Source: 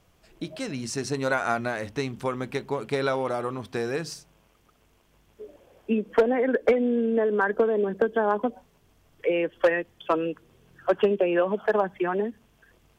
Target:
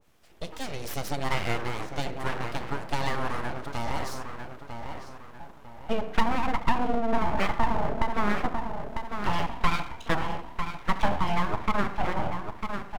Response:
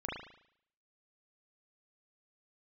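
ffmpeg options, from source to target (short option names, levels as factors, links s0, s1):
-filter_complex "[0:a]asplit=2[s0][s1];[s1]adelay=949,lowpass=f=1600:p=1,volume=0.473,asplit=2[s2][s3];[s3]adelay=949,lowpass=f=1600:p=1,volume=0.4,asplit=2[s4][s5];[s5]adelay=949,lowpass=f=1600:p=1,volume=0.4,asplit=2[s6][s7];[s7]adelay=949,lowpass=f=1600:p=1,volume=0.4,asplit=2[s8][s9];[s9]adelay=949,lowpass=f=1600:p=1,volume=0.4[s10];[s0][s2][s4][s6][s8][s10]amix=inputs=6:normalize=0,asplit=2[s11][s12];[1:a]atrim=start_sample=2205,adelay=35[s13];[s12][s13]afir=irnorm=-1:irlink=0,volume=0.224[s14];[s11][s14]amix=inputs=2:normalize=0,aeval=exprs='abs(val(0))':c=same,adynamicequalizer=threshold=0.01:dfrequency=1700:dqfactor=0.7:tfrequency=1700:tqfactor=0.7:attack=5:release=100:ratio=0.375:range=2:mode=cutabove:tftype=highshelf"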